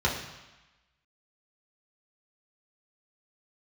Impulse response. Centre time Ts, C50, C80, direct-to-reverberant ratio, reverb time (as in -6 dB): 37 ms, 5.5 dB, 8.0 dB, -4.5 dB, 1.1 s